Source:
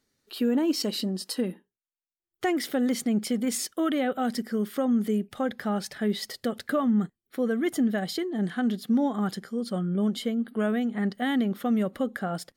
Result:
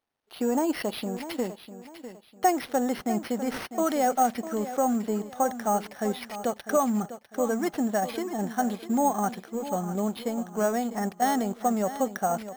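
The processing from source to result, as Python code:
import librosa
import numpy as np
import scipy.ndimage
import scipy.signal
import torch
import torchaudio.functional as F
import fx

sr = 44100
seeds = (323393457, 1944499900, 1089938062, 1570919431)

y = fx.law_mismatch(x, sr, coded='A')
y = fx.peak_eq(y, sr, hz=800.0, db=15.0, octaves=1.1)
y = fx.echo_feedback(y, sr, ms=650, feedback_pct=33, wet_db=-12.5)
y = np.repeat(y[::6], 6)[:len(y)]
y = y * librosa.db_to_amplitude(-4.0)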